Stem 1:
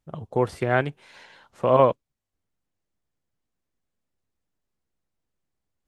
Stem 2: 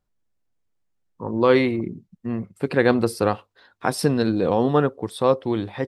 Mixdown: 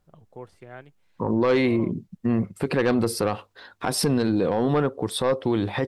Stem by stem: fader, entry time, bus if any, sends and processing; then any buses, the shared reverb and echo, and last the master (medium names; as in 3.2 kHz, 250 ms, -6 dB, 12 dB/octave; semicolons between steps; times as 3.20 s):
-15.0 dB, 0.00 s, no send, auto duck -9 dB, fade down 1.20 s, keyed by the second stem
0.0 dB, 0.00 s, no send, sine folder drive 4 dB, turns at -3.5 dBFS; compression 3:1, threshold -17 dBFS, peak gain reduction 8 dB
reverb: none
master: peak limiter -14 dBFS, peak gain reduction 9 dB